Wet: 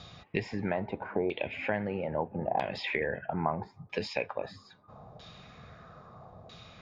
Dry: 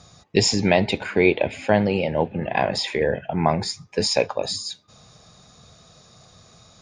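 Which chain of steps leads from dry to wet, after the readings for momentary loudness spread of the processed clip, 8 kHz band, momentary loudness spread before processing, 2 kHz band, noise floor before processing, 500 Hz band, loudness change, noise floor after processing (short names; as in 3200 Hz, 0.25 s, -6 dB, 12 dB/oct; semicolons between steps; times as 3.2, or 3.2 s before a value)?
19 LU, under -25 dB, 8 LU, -9.5 dB, -53 dBFS, -11.5 dB, -11.5 dB, -59 dBFS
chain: compressor 3:1, threshold -34 dBFS, peak gain reduction 16.5 dB; LFO low-pass saw down 0.77 Hz 710–3500 Hz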